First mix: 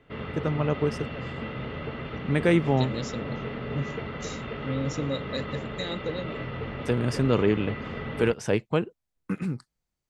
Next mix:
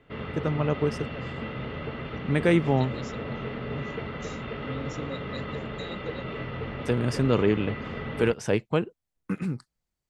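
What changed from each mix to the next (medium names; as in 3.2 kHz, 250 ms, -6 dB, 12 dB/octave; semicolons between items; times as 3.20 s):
second voice -7.0 dB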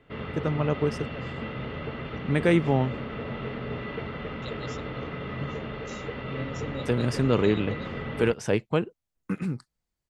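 second voice: entry +1.65 s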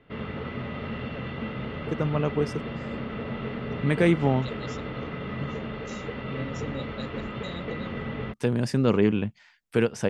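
first voice: entry +1.55 s; master: add peaking EQ 210 Hz +5 dB 0.34 oct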